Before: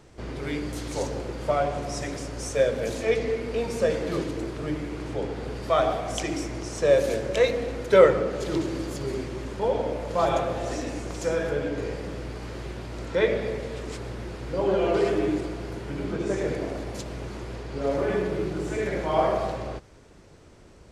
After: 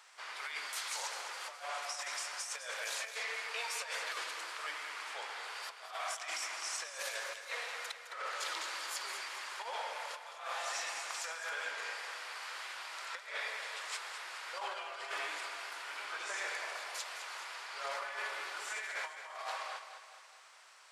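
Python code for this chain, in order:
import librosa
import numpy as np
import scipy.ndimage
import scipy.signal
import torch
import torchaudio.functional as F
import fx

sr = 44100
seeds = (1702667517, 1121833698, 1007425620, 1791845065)

y = scipy.signal.sosfilt(scipy.signal.butter(4, 990.0, 'highpass', fs=sr, output='sos'), x)
y = fx.peak_eq(y, sr, hz=6300.0, db=-2.5, octaves=0.22)
y = fx.over_compress(y, sr, threshold_db=-40.0, ratio=-0.5)
y = fx.echo_feedback(y, sr, ms=211, feedback_pct=52, wet_db=-10)
y = F.gain(torch.from_numpy(y), -1.0).numpy()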